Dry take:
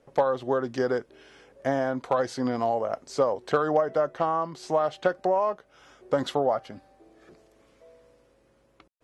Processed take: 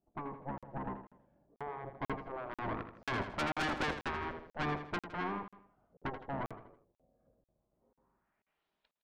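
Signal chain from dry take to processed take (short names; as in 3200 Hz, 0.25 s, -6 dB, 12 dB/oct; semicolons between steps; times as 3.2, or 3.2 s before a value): octaver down 1 oct, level -3 dB; Doppler pass-by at 3.73, 16 m/s, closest 11 m; low-pass sweep 470 Hz -> 3700 Hz, 7.68–8.66; tube stage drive 30 dB, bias 0.7; spectral gate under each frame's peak -10 dB weak; feedback echo 81 ms, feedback 41%, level -9.5 dB; crackling interface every 0.49 s, samples 2048, zero, from 0.58; gain +4.5 dB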